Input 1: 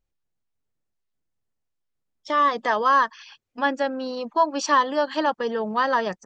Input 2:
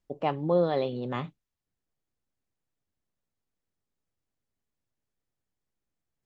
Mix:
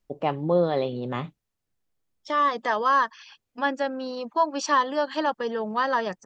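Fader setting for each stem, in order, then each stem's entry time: -2.5, +2.5 dB; 0.00, 0.00 s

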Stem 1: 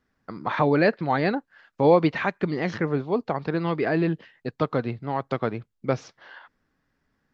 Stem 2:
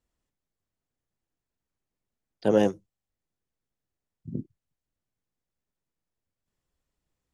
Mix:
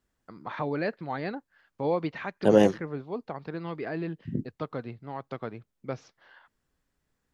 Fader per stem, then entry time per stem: -10.0, +2.5 dB; 0.00, 0.00 s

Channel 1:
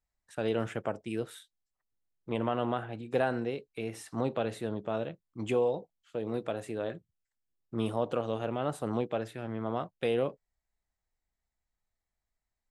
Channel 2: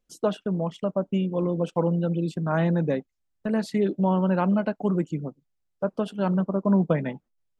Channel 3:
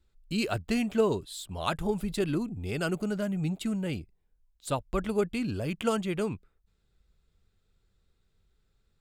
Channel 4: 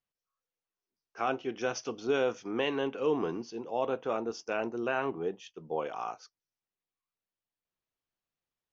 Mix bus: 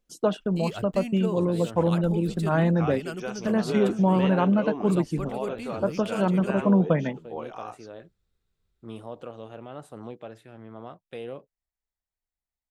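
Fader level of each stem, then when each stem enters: -8.0, +1.0, -6.0, -2.5 dB; 1.10, 0.00, 0.25, 1.60 s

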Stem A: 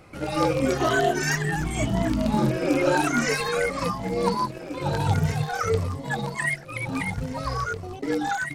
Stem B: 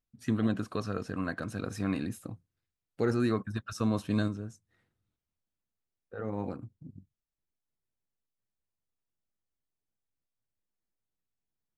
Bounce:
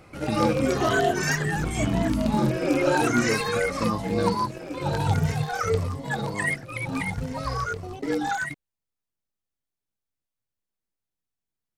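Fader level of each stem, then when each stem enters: -0.5, 0.0 dB; 0.00, 0.00 s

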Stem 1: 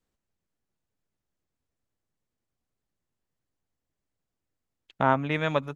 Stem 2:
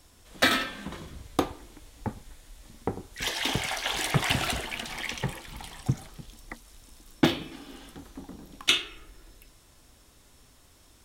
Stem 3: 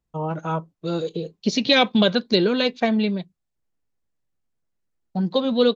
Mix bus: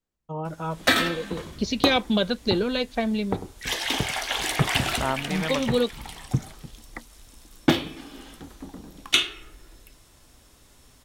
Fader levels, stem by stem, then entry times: -4.5, +2.5, -5.0 dB; 0.00, 0.45, 0.15 s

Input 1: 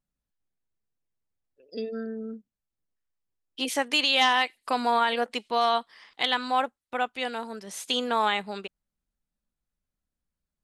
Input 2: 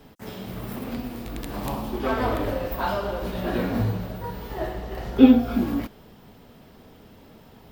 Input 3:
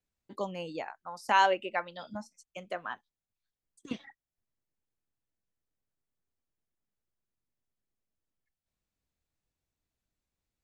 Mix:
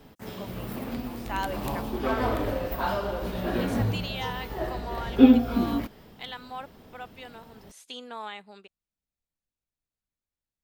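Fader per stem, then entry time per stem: -13.5, -2.0, -8.0 dB; 0.00, 0.00, 0.00 s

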